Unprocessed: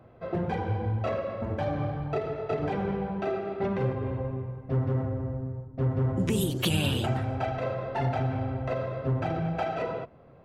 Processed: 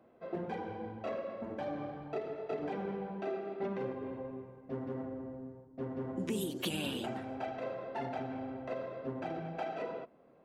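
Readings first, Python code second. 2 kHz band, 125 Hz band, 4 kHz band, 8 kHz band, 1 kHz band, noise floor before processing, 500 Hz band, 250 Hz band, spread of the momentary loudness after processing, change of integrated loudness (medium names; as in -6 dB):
-8.5 dB, -18.5 dB, -8.5 dB, -8.5 dB, -8.5 dB, -53 dBFS, -7.5 dB, -8.0 dB, 7 LU, -9.5 dB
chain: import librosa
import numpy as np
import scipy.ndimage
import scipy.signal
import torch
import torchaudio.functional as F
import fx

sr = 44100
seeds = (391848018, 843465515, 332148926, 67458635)

y = fx.low_shelf_res(x, sr, hz=160.0, db=-12.5, q=1.5)
y = fx.notch(y, sr, hz=1300.0, q=29.0)
y = y * librosa.db_to_amplitude(-8.5)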